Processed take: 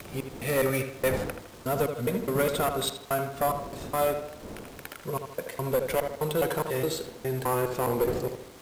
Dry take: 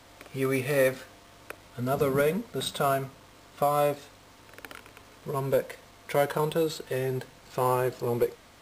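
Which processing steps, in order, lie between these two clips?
slices reordered back to front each 207 ms, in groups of 2
wind on the microphone 410 Hz −43 dBFS
high-shelf EQ 8,000 Hz +9 dB
on a send: tape delay 78 ms, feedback 51%, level −7 dB, low-pass 3,000 Hz
on the sum: surface crackle 320 per second −41 dBFS
asymmetric clip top −22 dBFS

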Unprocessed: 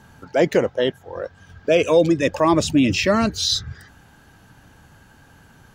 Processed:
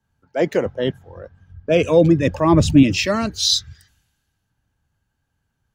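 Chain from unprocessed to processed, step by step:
0:00.65–0:02.83: bass and treble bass +10 dB, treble −2 dB
multiband upward and downward expander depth 70%
level −2 dB

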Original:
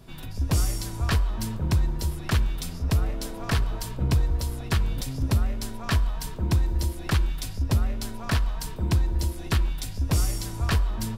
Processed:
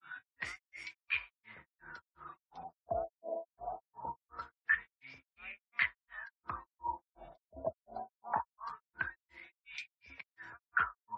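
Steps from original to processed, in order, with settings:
LFO wah 0.23 Hz 640–2,400 Hz, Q 18
granular cloud 240 ms, grains 2.8 per second, pitch spread up and down by 0 semitones
gate on every frequency bin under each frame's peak −30 dB strong
level +16.5 dB

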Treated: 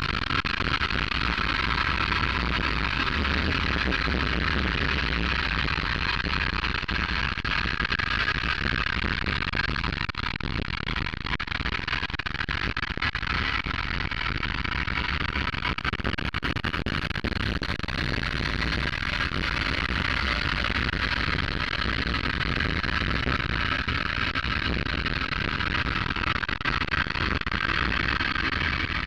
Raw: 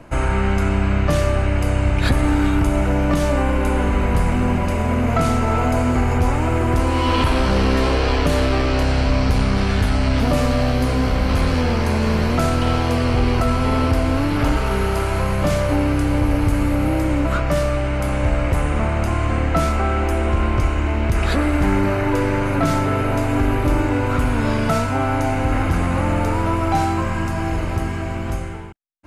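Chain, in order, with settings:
lower of the sound and its delayed copy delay 3.1 ms
drawn EQ curve 110 Hz 0 dB, 620 Hz −17 dB, 1,500 Hz +10 dB, 4,400 Hz +5 dB, 7,100 Hz −16 dB
brickwall limiter −14 dBFS, peak gain reduction 9 dB
extreme stretch with random phases 38×, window 0.10 s, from 0:07.84
multi-voice chorus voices 2, 0.75 Hz, delay 22 ms, depth 3.5 ms
slap from a distant wall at 53 metres, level −10 dB
saturating transformer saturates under 630 Hz
level +5 dB

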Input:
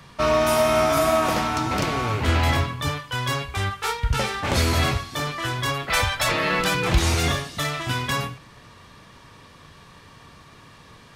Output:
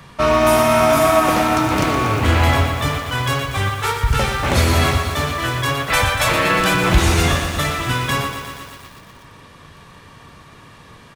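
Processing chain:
parametric band 4,900 Hz −4 dB 0.93 octaves
single-tap delay 90 ms −21 dB
feedback echo at a low word length 119 ms, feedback 80%, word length 7 bits, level −8.5 dB
level +5 dB

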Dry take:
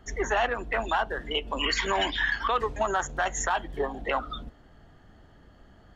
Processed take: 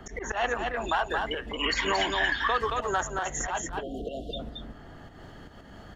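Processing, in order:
volume swells 136 ms
time-frequency box erased 0:03.60–0:04.39, 740–2,700 Hz
on a send: single-tap delay 224 ms −5 dB
on the sum: multiband upward and downward compressor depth 40%

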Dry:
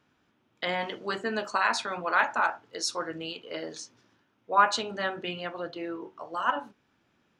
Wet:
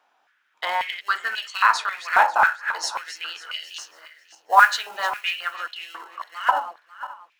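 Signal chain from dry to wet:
feedback delay that plays each chunk backwards 272 ms, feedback 47%, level −12 dB
in parallel at −11 dB: decimation without filtering 37×
0:03.67–0:05.54: on the sum: noise that follows the level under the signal 22 dB
high-pass on a step sequencer 3.7 Hz 780–2,800 Hz
level +2 dB

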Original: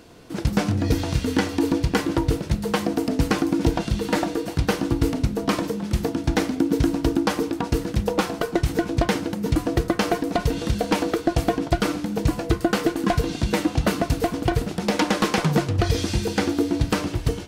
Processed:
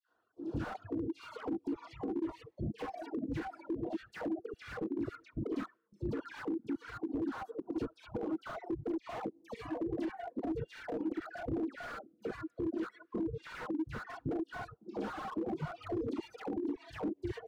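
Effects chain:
output level in coarse steps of 23 dB
high-shelf EQ 2,200 Hz −8.5 dB
reverb whose tail is shaped and stops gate 90 ms rising, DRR −4 dB
auto-filter band-pass square 1.8 Hz 330–1,500 Hz
parametric band 190 Hz −15 dB 0.25 octaves
all-pass dispersion lows, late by 94 ms, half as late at 1,400 Hz
auto-filter notch saw down 0.14 Hz 610–2,300 Hz
reverb reduction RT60 1.5 s
downward compressor 8 to 1, threshold −33 dBFS, peak gain reduction 14.5 dB
reverb reduction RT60 0.94 s
brickwall limiter −32.5 dBFS, peak gain reduction 9 dB
slew-rate limiting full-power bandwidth 5.8 Hz
level +5 dB

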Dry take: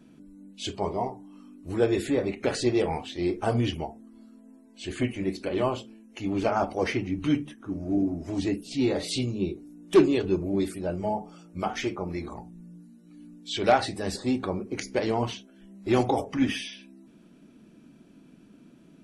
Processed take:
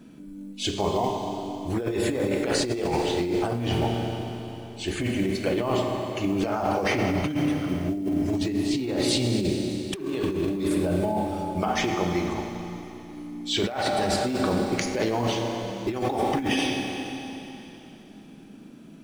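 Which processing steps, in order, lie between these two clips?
floating-point word with a short mantissa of 4 bits
four-comb reverb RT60 3.3 s, combs from 30 ms, DRR 4 dB
compressor whose output falls as the input rises −28 dBFS, ratio −1
level +3 dB

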